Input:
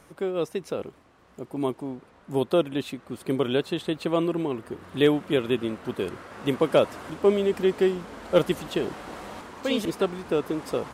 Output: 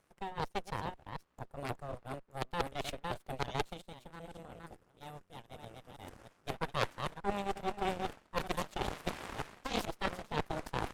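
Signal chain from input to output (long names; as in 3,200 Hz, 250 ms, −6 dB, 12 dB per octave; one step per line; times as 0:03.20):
delay that plays each chunk backwards 314 ms, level −7 dB
reversed playback
downward compressor 6 to 1, threshold −31 dBFS, peak gain reduction 16 dB
reversed playback
gain on a spectral selection 0:03.73–0:06.47, 210–4,700 Hz −7 dB
harmonic generator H 3 −10 dB, 4 −9 dB, 6 −23 dB, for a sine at −20.5 dBFS
level +3.5 dB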